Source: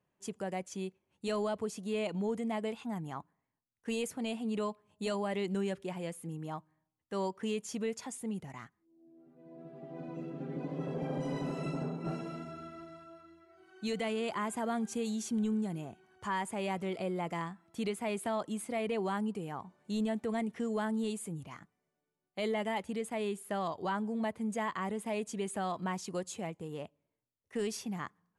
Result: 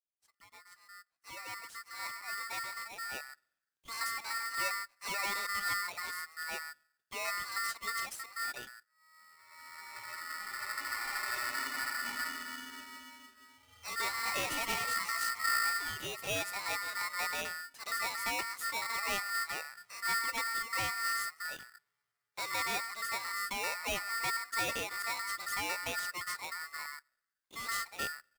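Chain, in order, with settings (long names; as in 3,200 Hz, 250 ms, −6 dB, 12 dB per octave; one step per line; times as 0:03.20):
fade in at the beginning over 4.09 s
0:14.04–0:16.58: delay with pitch and tempo change per echo 215 ms, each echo +4 semitones, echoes 3, each echo −6 dB
multiband delay without the direct sound highs, lows 130 ms, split 480 Hz
ring modulator with a square carrier 1,600 Hz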